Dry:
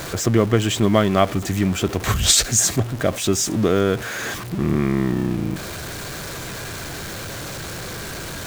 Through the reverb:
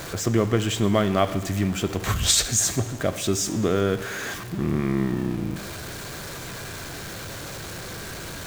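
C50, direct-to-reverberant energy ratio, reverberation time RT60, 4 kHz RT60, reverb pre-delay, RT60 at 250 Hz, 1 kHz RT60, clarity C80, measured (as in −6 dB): 13.0 dB, 11.0 dB, 1.3 s, 1.2 s, 7 ms, 1.3 s, 1.3 s, 14.5 dB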